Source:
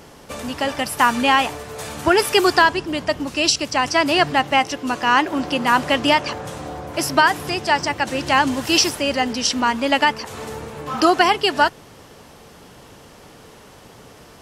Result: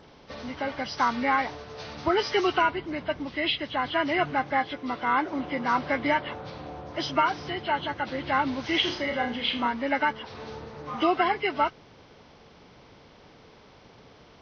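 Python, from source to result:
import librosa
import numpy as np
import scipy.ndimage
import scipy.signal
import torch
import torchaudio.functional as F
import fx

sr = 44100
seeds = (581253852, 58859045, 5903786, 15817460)

y = fx.freq_compress(x, sr, knee_hz=1100.0, ratio=1.5)
y = fx.room_flutter(y, sr, wall_m=5.7, rt60_s=0.34, at=(8.81, 9.68))
y = y * 10.0 ** (-8.0 / 20.0)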